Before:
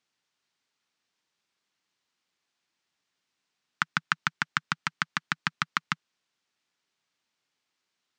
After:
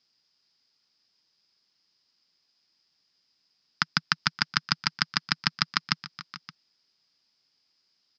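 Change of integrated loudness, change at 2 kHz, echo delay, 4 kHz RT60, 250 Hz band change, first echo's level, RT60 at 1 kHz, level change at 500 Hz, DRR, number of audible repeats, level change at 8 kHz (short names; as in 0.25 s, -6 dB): +3.5 dB, 0.0 dB, 0.441 s, none, +4.0 dB, -17.5 dB, none, +1.5 dB, none, 2, +3.5 dB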